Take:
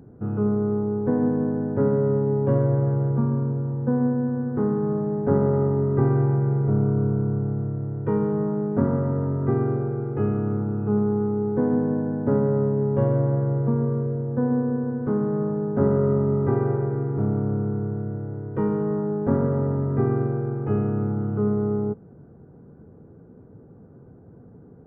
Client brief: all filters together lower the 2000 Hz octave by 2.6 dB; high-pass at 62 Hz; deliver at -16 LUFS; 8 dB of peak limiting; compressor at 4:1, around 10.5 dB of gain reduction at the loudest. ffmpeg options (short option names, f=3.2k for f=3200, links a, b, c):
-af "highpass=62,equalizer=f=2k:t=o:g=-4,acompressor=threshold=-29dB:ratio=4,volume=18dB,alimiter=limit=-8dB:level=0:latency=1"